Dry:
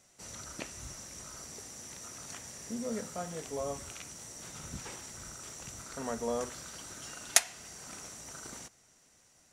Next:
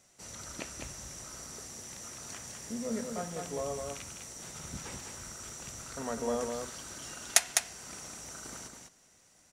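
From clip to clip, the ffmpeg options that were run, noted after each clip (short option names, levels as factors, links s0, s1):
-af "aecho=1:1:204:0.596"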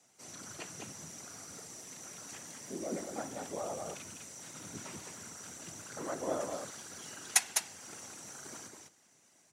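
-af "afftfilt=real='hypot(re,im)*cos(2*PI*random(0))':imag='hypot(re,im)*sin(2*PI*random(1))':win_size=512:overlap=0.75,afreqshift=76,volume=1.41"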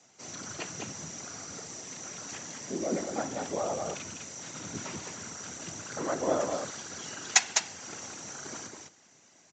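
-af "aresample=16000,aresample=44100,volume=2.24"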